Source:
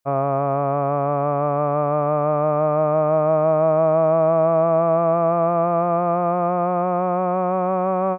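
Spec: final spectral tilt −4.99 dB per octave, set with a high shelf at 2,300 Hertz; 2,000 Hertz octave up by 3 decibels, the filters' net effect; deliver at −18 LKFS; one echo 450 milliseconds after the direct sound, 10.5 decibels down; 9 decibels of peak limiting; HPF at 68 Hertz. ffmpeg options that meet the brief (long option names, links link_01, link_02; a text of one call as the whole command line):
ffmpeg -i in.wav -af "highpass=68,equalizer=frequency=2000:width_type=o:gain=6.5,highshelf=frequency=2300:gain=-4.5,alimiter=limit=-16.5dB:level=0:latency=1,aecho=1:1:450:0.299,volume=8dB" out.wav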